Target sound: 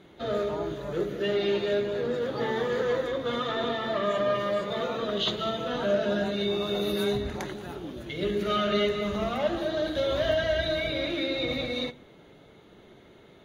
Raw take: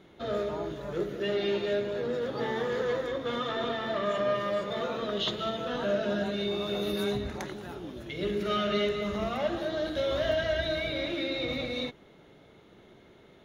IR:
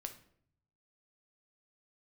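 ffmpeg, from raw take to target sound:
-filter_complex "[0:a]bandreject=f=5.4k:w=11,asplit=2[a][b];[1:a]atrim=start_sample=2205[c];[b][c]afir=irnorm=-1:irlink=0,volume=-5.5dB[d];[a][d]amix=inputs=2:normalize=0" -ar 48000 -c:a libvorbis -b:a 48k

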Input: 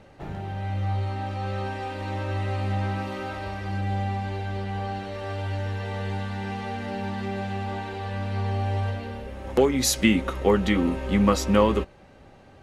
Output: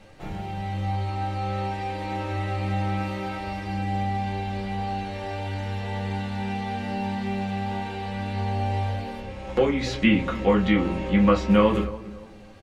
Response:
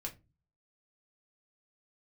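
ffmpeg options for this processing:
-filter_complex "[0:a]asettb=1/sr,asplit=3[a][b][c];[a]atrim=end=9.204[d];[b]atrim=start=9.2:end=11.51,asetpts=PTS-STARTPTS,afade=t=in:d=0.004:c=qsin,afade=t=out:st=2.306:d=0.004:c=qsin,lowpass=6.4k[e];[c]atrim=start=11.506[f];[d][e]acrossfade=d=0.004:c1=hsin:c2=qsin[g];[g][f]acrossfade=d=0.004:c1=qsin:c2=hsin,acrossover=split=3100[h][i];[i]acompressor=threshold=-54dB:ratio=4:attack=1:release=60[j];[h][j]amix=inputs=2:normalize=0,highshelf=f=2.1k:g=9.5,asplit=2[k][l];[l]adelay=285,lowpass=f=1.2k:p=1,volume=-15.5dB,asplit=2[m][n];[n]adelay=285,lowpass=f=1.2k:p=1,volume=0.38,asplit=2[o][p];[p]adelay=285,lowpass=f=1.2k:p=1,volume=0.38[q];[k][m][o][q]amix=inputs=4:normalize=0[r];[1:a]atrim=start_sample=2205[s];[r][s]afir=irnorm=-1:irlink=0"

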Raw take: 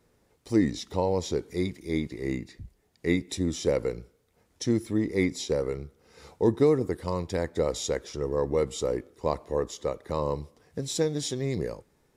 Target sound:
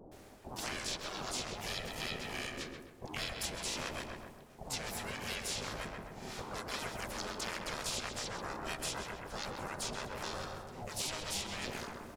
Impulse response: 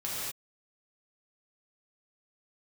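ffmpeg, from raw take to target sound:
-filter_complex "[0:a]afftfilt=real='re*lt(hypot(re,im),0.0631)':imag='im*lt(hypot(re,im),0.0631)':win_size=1024:overlap=0.75,asplit=4[a][b][c][d];[b]asetrate=33038,aresample=44100,atempo=1.33484,volume=-3dB[e];[c]asetrate=55563,aresample=44100,atempo=0.793701,volume=-11dB[f];[d]asetrate=58866,aresample=44100,atempo=0.749154,volume=-4dB[g];[a][e][f][g]amix=inputs=4:normalize=0,areverse,acompressor=mode=upward:threshold=-49dB:ratio=2.5,areverse,acrossover=split=660[h][i];[i]adelay=120[j];[h][j]amix=inputs=2:normalize=0,aeval=exprs='val(0)*sin(2*PI*310*n/s)':c=same,asplit=2[k][l];[l]adelay=130,lowpass=f=2.1k:p=1,volume=-5dB,asplit=2[m][n];[n]adelay=130,lowpass=f=2.1k:p=1,volume=0.45,asplit=2[o][p];[p]adelay=130,lowpass=f=2.1k:p=1,volume=0.45,asplit=2[q][r];[r]adelay=130,lowpass=f=2.1k:p=1,volume=0.45,asplit=2[s][t];[t]adelay=130,lowpass=f=2.1k:p=1,volume=0.45,asplit=2[u][v];[v]adelay=130,lowpass=f=2.1k:p=1,volume=0.45[w];[m][o][q][s][u][w]amix=inputs=6:normalize=0[x];[k][x]amix=inputs=2:normalize=0,acrossover=split=840|2900[y][z][aa];[y]acompressor=threshold=-49dB:ratio=4[ab];[z]acompressor=threshold=-52dB:ratio=4[ac];[aa]acompressor=threshold=-47dB:ratio=4[ad];[ab][ac][ad]amix=inputs=3:normalize=0,volume=7.5dB"

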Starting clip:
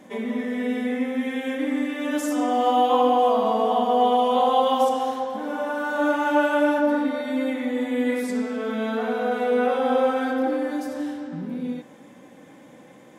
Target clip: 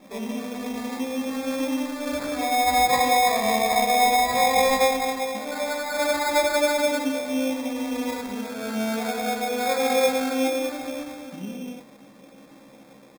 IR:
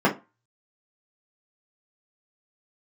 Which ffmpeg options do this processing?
-filter_complex "[0:a]asplit=2[a][b];[b]adelay=15,volume=-3dB[c];[a][c]amix=inputs=2:normalize=0,asplit=2[d][e];[1:a]atrim=start_sample=2205,asetrate=48510,aresample=44100[f];[e][f]afir=irnorm=-1:irlink=0,volume=-31.5dB[g];[d][g]amix=inputs=2:normalize=0,acrusher=samples=15:mix=1:aa=0.000001,volume=-4dB"

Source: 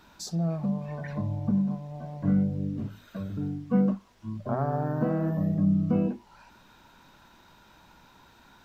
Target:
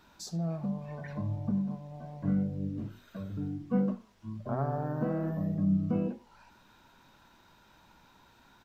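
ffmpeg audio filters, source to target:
-filter_complex "[0:a]flanger=delay=7.2:depth=3.7:regen=88:speed=1.3:shape=triangular,asplit=2[a][b];[b]aecho=0:1:79:0.0841[c];[a][c]amix=inputs=2:normalize=0"

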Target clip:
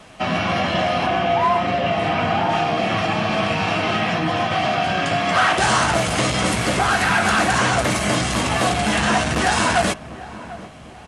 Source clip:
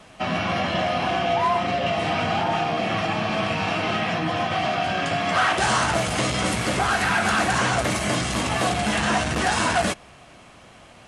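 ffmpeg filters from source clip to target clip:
-filter_complex "[0:a]asettb=1/sr,asplit=3[a][b][c];[a]atrim=end=1.064[d];[b]atrim=start=1.06:end=2.49,asetpts=PTS-STARTPTS,afade=t=in:d=0.004:c=qsin,afade=t=out:st=1.426:d=0.004:c=qsin,acrossover=split=3100[e][f];[f]acompressor=threshold=-42dB:ratio=4:attack=1:release=60[g];[e][g]amix=inputs=2:normalize=0[h];[c]atrim=start=2.486[i];[d][h]acrossfade=d=0.004:c1=hsin:c2=qsin[j];[j][i]acrossfade=d=0.004:c1=qsin:c2=hsin,asplit=2[k][l];[l]adelay=745,lowpass=f=1.1k:p=1,volume=-15dB,asplit=2[m][n];[n]adelay=745,lowpass=f=1.1k:p=1,volume=0.51,asplit=2[o][p];[p]adelay=745,lowpass=f=1.1k:p=1,volume=0.51,asplit=2[q][r];[r]adelay=745,lowpass=f=1.1k:p=1,volume=0.51,asplit=2[s][t];[t]adelay=745,lowpass=f=1.1k:p=1,volume=0.51[u];[m][o][q][s][u]amix=inputs=5:normalize=0[v];[k][v]amix=inputs=2:normalize=0,volume=3.5dB"

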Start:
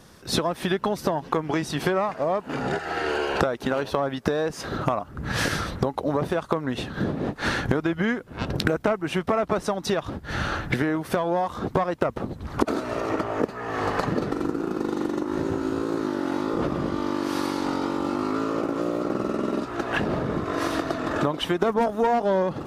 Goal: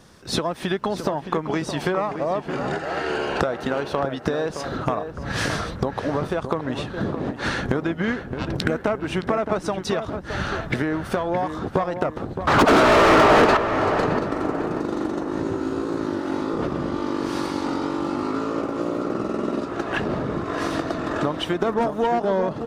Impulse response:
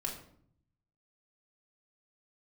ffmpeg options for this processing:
-filter_complex "[0:a]equalizer=f=12k:t=o:w=0.25:g=-11,asettb=1/sr,asplit=3[a][b][c];[a]atrim=end=12.474[d];[b]atrim=start=12.47:end=13.57,asetpts=PTS-STARTPTS,afade=t=in:d=0.004:c=qsin,afade=t=out:st=1.096:d=0.004:c=qsin,asplit=2[e][f];[f]highpass=f=720:p=1,volume=38dB,asoftclip=type=tanh:threshold=-6.5dB[g];[e][g]amix=inputs=2:normalize=0,lowpass=f=2k:p=1,volume=-6dB[h];[c]atrim=start=13.566[i];[d][h]acrossfade=d=0.004:c1=hsin:c2=qsin[j];[j][i]acrossfade=d=0.004:c1=qsin:c2=hsin,asplit=2[k][l];[l]adelay=618,lowpass=f=1.8k:p=1,volume=-8dB,asplit=2[m][n];[n]adelay=618,lowpass=f=1.8k:p=1,volume=0.46,asplit=2[o][p];[p]adelay=618,lowpass=f=1.8k:p=1,volume=0.46,asplit=2[q][r];[r]adelay=618,lowpass=f=1.8k:p=1,volume=0.46,asplit=2[s][t];[t]adelay=618,lowpass=f=1.8k:p=1,volume=0.46[u];[k][m][o][q][s][u]amix=inputs=6:normalize=0"

